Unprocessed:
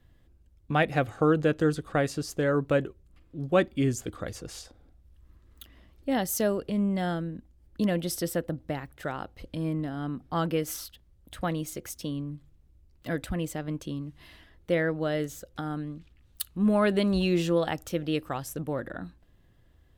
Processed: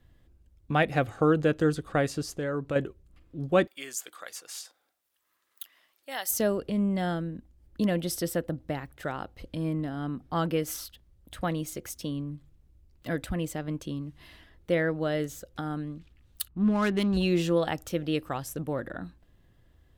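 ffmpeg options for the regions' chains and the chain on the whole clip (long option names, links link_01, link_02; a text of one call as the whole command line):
ffmpeg -i in.wav -filter_complex "[0:a]asettb=1/sr,asplit=3[link_01][link_02][link_03];[link_01]atrim=end=2.304[link_04];[link_02]atrim=start=2.3:end=2.76,asetpts=PTS-STARTPTS,afade=type=in:duration=0.004:curve=qsin,afade=type=out:start_time=0.456:duration=0.004:curve=qsin,equalizer=frequency=16000:width=1.6:gain=-14.5,acompressor=threshold=-37dB:ratio=1.5:attack=3.2:release=140:knee=1:detection=peak[link_05];[link_03]atrim=start=2.756[link_06];[link_04][link_05]acrossfade=duration=0.004:curve1=hsin:curve2=qsin[link_07];[link_07][link_06]acrossfade=duration=0.004:curve1=qsin:curve2=hsin,asettb=1/sr,asplit=3[link_08][link_09][link_10];[link_08]atrim=end=3.674[link_11];[link_09]atrim=start=3.67:end=6.31,asetpts=PTS-STARTPTS,afade=type=in:duration=0.004:curve=qsin,afade=type=out:start_time=2.636:duration=0.004:curve=qsin,highpass=990,highshelf=frequency=9500:gain=11[link_12];[link_10]atrim=start=6.306[link_13];[link_11][link_12]acrossfade=duration=0.004:curve1=hsin:curve2=qsin[link_14];[link_14][link_13]acrossfade=duration=0.004:curve1=qsin:curve2=hsin,asettb=1/sr,asplit=3[link_15][link_16][link_17];[link_15]atrim=end=16.484[link_18];[link_16]atrim=start=16.48:end=17.17,asetpts=PTS-STARTPTS,afade=type=in:duration=0.004:curve=qsin,afade=type=out:start_time=0.686:duration=0.004:curve=qsin,equalizer=frequency=550:width_type=o:width=0.43:gain=-14.5,adynamicsmooth=sensitivity=7:basefreq=1000[link_19];[link_17]atrim=start=17.166[link_20];[link_18][link_19]acrossfade=duration=0.004:curve1=hsin:curve2=qsin[link_21];[link_21][link_20]acrossfade=duration=0.004:curve1=qsin:curve2=hsin" out.wav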